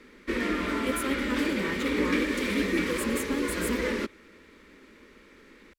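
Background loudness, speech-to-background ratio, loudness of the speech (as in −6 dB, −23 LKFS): −29.5 LKFS, −4.0 dB, −33.5 LKFS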